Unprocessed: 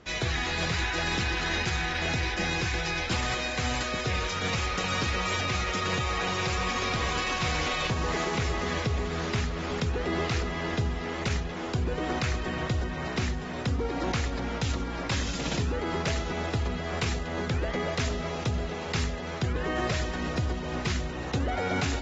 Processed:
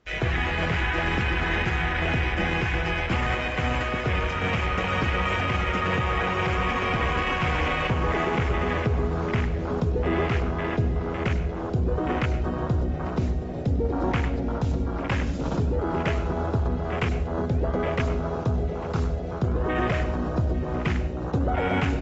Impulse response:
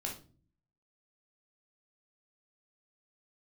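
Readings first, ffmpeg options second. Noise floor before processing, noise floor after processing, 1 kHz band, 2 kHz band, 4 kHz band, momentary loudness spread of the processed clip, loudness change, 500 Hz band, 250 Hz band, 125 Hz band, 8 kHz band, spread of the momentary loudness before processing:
−34 dBFS, −30 dBFS, +4.0 dB, +3.0 dB, −3.5 dB, 3 LU, +3.5 dB, +4.5 dB, +5.0 dB, +5.0 dB, can't be measured, 4 LU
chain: -filter_complex "[0:a]afwtdn=0.0251,aecho=1:1:849:0.126,asplit=2[link_01][link_02];[1:a]atrim=start_sample=2205,adelay=99[link_03];[link_02][link_03]afir=irnorm=-1:irlink=0,volume=-12.5dB[link_04];[link_01][link_04]amix=inputs=2:normalize=0,volume=4.5dB"

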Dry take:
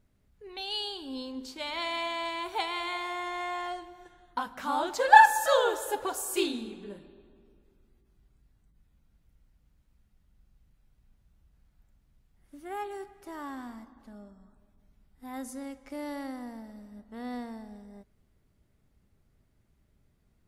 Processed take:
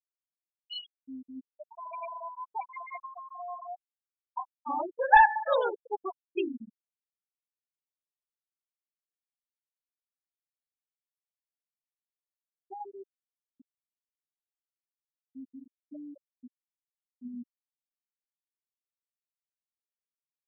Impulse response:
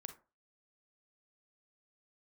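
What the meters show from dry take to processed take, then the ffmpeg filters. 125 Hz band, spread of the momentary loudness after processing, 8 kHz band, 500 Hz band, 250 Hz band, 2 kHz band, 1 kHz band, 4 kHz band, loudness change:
can't be measured, 24 LU, below −35 dB, −3.0 dB, −5.5 dB, −3.0 dB, −2.5 dB, −11.0 dB, −0.5 dB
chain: -af "flanger=delay=4.1:depth=6:regen=-72:speed=0.58:shape=triangular,aeval=exprs='clip(val(0),-1,0.168)':channel_layout=same,afftfilt=real='re*gte(hypot(re,im),0.0794)':imag='im*gte(hypot(re,im),0.0794)':win_size=1024:overlap=0.75,volume=2.5dB"

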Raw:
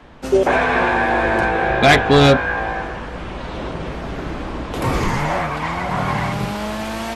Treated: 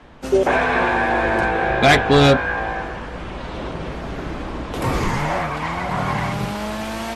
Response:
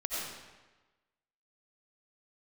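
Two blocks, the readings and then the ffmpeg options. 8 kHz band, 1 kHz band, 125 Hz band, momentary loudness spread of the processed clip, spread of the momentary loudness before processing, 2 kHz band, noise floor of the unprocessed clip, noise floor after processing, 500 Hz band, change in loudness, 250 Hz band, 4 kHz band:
−1.0 dB, −1.5 dB, −1.5 dB, 16 LU, 16 LU, −1.5 dB, −30 dBFS, −31 dBFS, −1.5 dB, −1.5 dB, −1.5 dB, −1.5 dB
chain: -af "volume=-1dB" -ar 44100 -c:a libmp3lame -b:a 64k

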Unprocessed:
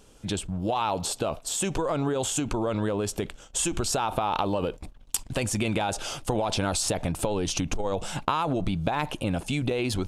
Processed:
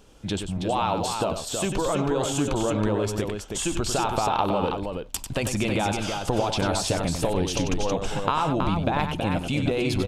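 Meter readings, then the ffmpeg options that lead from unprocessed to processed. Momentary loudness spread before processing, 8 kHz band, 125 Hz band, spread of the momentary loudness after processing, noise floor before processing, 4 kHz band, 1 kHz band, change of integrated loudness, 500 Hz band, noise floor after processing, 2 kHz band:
5 LU, −1.5 dB, +3.0 dB, 4 LU, −52 dBFS, +2.0 dB, +3.0 dB, +2.5 dB, +3.0 dB, −38 dBFS, +2.5 dB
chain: -af "equalizer=frequency=9400:width_type=o:width=1.1:gain=-6.5,aecho=1:1:95|323:0.422|0.531,volume=1.5dB"

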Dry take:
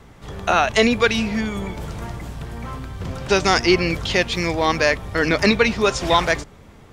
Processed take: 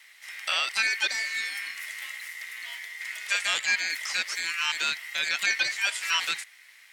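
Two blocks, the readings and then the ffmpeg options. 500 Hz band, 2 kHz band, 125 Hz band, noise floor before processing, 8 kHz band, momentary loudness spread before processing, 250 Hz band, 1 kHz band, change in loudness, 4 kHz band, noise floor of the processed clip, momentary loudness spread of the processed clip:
−28.5 dB, −4.0 dB, below −35 dB, −46 dBFS, −1.5 dB, 16 LU, below −30 dB, −15.5 dB, −8.5 dB, −3.5 dB, −54 dBFS, 12 LU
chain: -filter_complex "[0:a]aeval=exprs='val(0)*sin(2*PI*2000*n/s)':channel_layout=same,aderivative,acrossover=split=3300[link_01][link_02];[link_02]acompressor=threshold=-37dB:ratio=4:attack=1:release=60[link_03];[link_01][link_03]amix=inputs=2:normalize=0,volume=5dB"

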